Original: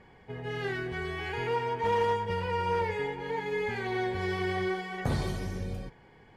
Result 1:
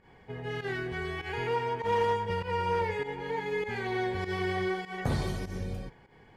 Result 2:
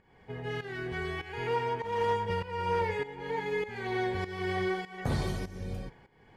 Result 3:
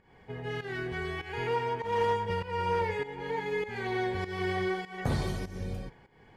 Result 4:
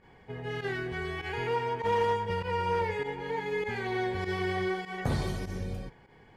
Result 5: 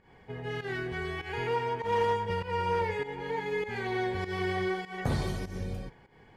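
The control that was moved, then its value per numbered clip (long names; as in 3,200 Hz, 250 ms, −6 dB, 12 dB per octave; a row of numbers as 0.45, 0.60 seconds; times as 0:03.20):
fake sidechain pumping, release: 113, 425, 268, 68, 171 milliseconds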